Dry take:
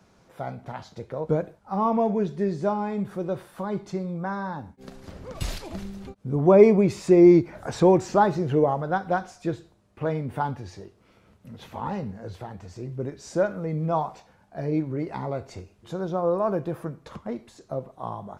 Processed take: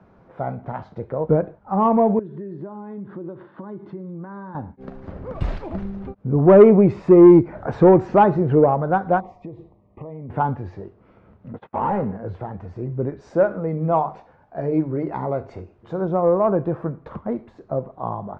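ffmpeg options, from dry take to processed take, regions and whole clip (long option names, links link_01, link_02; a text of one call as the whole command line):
ffmpeg -i in.wav -filter_complex "[0:a]asettb=1/sr,asplit=3[link_01][link_02][link_03];[link_01]atrim=end=2.194[link_04];[link_02]atrim=start=2.19:end=4.55,asetpts=PTS-STARTPTS,afade=type=in:duration=0.004:curve=qsin,afade=type=out:start_time=2.356:duration=0.004:curve=qsin,acompressor=threshold=-35dB:ratio=12:attack=3.2:release=140:knee=1:detection=peak,highpass=150,equalizer=frequency=330:width_type=q:width=4:gain=5,equalizer=frequency=500:width_type=q:width=4:gain=-6,equalizer=frequency=730:width_type=q:width=4:gain=-10,equalizer=frequency=1300:width_type=q:width=4:gain=-4,equalizer=frequency=2400:width_type=q:width=4:gain=-8,lowpass=frequency=3900:width=0.5412,lowpass=frequency=3900:width=1.3066[link_05];[link_03]atrim=start=4.546[link_06];[link_04][link_05]acrossfade=duration=0.004:curve1=hsin:curve2=qsin[link_07];[link_07][link_06]acrossfade=duration=0.004:curve1=qsin:curve2=hsin,asettb=1/sr,asplit=3[link_08][link_09][link_10];[link_08]atrim=end=9.204[link_11];[link_09]atrim=start=9.2:end=10.3,asetpts=PTS-STARTPTS,afade=type=in:duration=0.004:curve=qsin,afade=type=out:start_time=1.096:duration=0.004:curve=qsin,highshelf=frequency=3800:gain=-10.5,acompressor=threshold=-37dB:ratio=16:attack=3.2:release=140:knee=1:detection=peak,asuperstop=centerf=1500:order=8:qfactor=2.4[link_12];[link_10]atrim=start=10.296[link_13];[link_11][link_12]acrossfade=duration=0.004:curve1=hsin:curve2=qsin[link_14];[link_14][link_13]acrossfade=duration=0.004:curve1=qsin:curve2=hsin,asettb=1/sr,asplit=3[link_15][link_16][link_17];[link_15]atrim=end=11.534[link_18];[link_16]atrim=start=11.53:end=12.17,asetpts=PTS-STARTPTS,afade=type=in:duration=0.004:curve=qsin,afade=type=out:start_time=0.636:duration=0.004:curve=qsin,agate=range=-41dB:threshold=-44dB:ratio=16:release=100:detection=peak,asplit=2[link_19][link_20];[link_20]highpass=frequency=720:poles=1,volume=18dB,asoftclip=type=tanh:threshold=-18dB[link_21];[link_19][link_21]amix=inputs=2:normalize=0,lowpass=frequency=1200:poles=1,volume=-6dB[link_22];[link_17]atrim=start=12.166[link_23];[link_18][link_22]acrossfade=duration=0.004:curve1=hsin:curve2=qsin[link_24];[link_24][link_23]acrossfade=duration=0.004:curve1=qsin:curve2=hsin,asettb=1/sr,asplit=3[link_25][link_26][link_27];[link_25]atrim=end=13.214[link_28];[link_26]atrim=start=13.21:end=16.02,asetpts=PTS-STARTPTS,afade=type=in:duration=0.004:curve=qsin,afade=type=out:start_time=2.806:duration=0.004:curve=qsin,bass=frequency=250:gain=-3,treble=frequency=4000:gain=5,bandreject=frequency=50:width_type=h:width=6,bandreject=frequency=100:width_type=h:width=6,bandreject=frequency=150:width_type=h:width=6,bandreject=frequency=200:width_type=h:width=6,bandreject=frequency=250:width_type=h:width=6,bandreject=frequency=300:width_type=h:width=6,bandreject=frequency=350:width_type=h:width=6[link_29];[link_27]atrim=start=16.016[link_30];[link_28][link_29]acrossfade=duration=0.004:curve1=hsin:curve2=qsin[link_31];[link_31][link_30]acrossfade=duration=0.004:curve1=qsin:curve2=hsin,lowpass=1400,acontrast=71" out.wav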